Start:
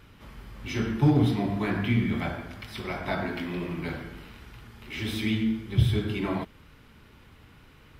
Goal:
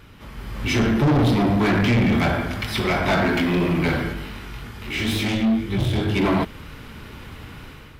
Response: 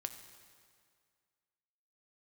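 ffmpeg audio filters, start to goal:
-filter_complex "[0:a]dynaudnorm=f=320:g=3:m=2.82,asoftclip=type=tanh:threshold=0.0891,asplit=3[s0][s1][s2];[s0]afade=t=out:st=4.12:d=0.02[s3];[s1]flanger=delay=20:depth=3:speed=2.1,afade=t=in:st=4.12:d=0.02,afade=t=out:st=6.15:d=0.02[s4];[s2]afade=t=in:st=6.15:d=0.02[s5];[s3][s4][s5]amix=inputs=3:normalize=0,volume=2"

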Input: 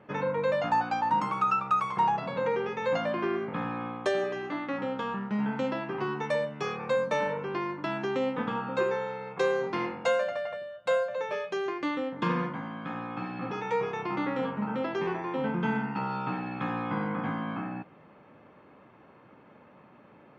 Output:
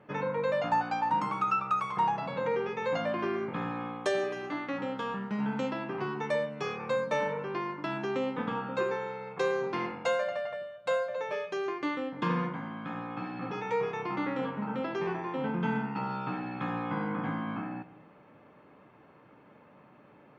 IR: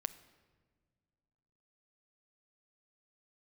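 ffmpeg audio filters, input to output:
-filter_complex "[0:a]asettb=1/sr,asplit=3[s0][s1][s2];[s0]atrim=end=3.194[s3];[s1]atrim=start=3.19:end=5.7,asetpts=PTS-STARTPTS,afade=t=in:d=0.004:c=qsin,afade=t=out:st=2.506:d=0.004:c=qsin,highshelf=f=5900:g=8.5[s4];[s2]atrim=start=5.696[s5];[s3][s4]acrossfade=d=0.004:c1=hsin:c2=qsin[s6];[s6][s5]acrossfade=d=0.004:c1=qsin:c2=hsin[s7];[1:a]atrim=start_sample=2205,afade=t=out:st=0.33:d=0.01,atrim=end_sample=14994[s8];[s7][s8]afir=irnorm=-1:irlink=0,volume=0.891"

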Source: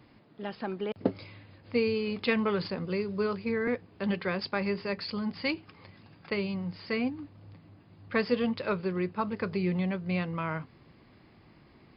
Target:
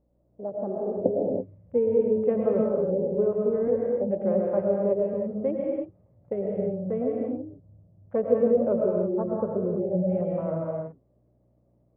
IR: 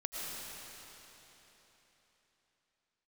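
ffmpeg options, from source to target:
-filter_complex "[0:a]afwtdn=0.0158,lowpass=f=580:t=q:w=4.9,aeval=exprs='val(0)+0.000501*(sin(2*PI*60*n/s)+sin(2*PI*2*60*n/s)/2+sin(2*PI*3*60*n/s)/3+sin(2*PI*4*60*n/s)/4+sin(2*PI*5*60*n/s)/5)':c=same[s0];[1:a]atrim=start_sample=2205,afade=t=out:st=0.39:d=0.01,atrim=end_sample=17640[s1];[s0][s1]afir=irnorm=-1:irlink=0"

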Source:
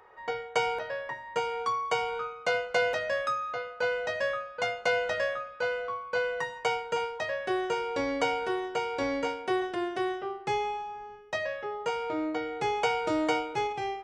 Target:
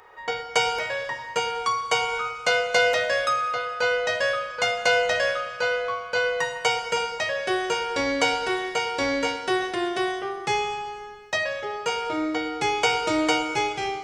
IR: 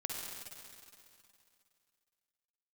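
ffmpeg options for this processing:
-filter_complex "[0:a]highshelf=f=2200:g=10.5,asplit=2[s0][s1];[1:a]atrim=start_sample=2205,asetrate=61740,aresample=44100,lowshelf=f=180:g=6.5[s2];[s1][s2]afir=irnorm=-1:irlink=0,volume=0.75[s3];[s0][s3]amix=inputs=2:normalize=0"

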